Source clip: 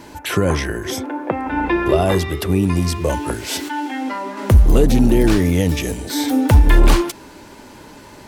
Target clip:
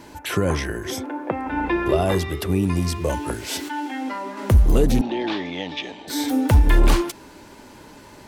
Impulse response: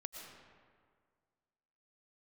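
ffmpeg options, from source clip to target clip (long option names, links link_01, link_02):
-filter_complex "[0:a]asettb=1/sr,asplit=3[link_01][link_02][link_03];[link_01]atrim=end=5.014[link_04];[link_02]atrim=start=5.01:end=6.08,asetpts=PTS-STARTPTS,afade=type=in:duration=0.004:curve=qsin,afade=type=out:start_time=1.066:duration=0.004:curve=qsin,highpass=390,equalizer=frequency=460:width_type=q:width=4:gain=-9,equalizer=frequency=840:width_type=q:width=4:gain=6,equalizer=frequency=1400:width_type=q:width=4:gain=-6,equalizer=frequency=3500:width_type=q:width=4:gain=7,lowpass=frequency=4200:width=0.5412,lowpass=frequency=4200:width=1.3066[link_05];[link_03]atrim=start=6.076[link_06];[link_04][link_05]acrossfade=duration=0.004:curve1=hsin:curve2=qsin[link_07];[link_07][link_06]acrossfade=duration=0.004:curve1=qsin:curve2=hsin,volume=-4dB"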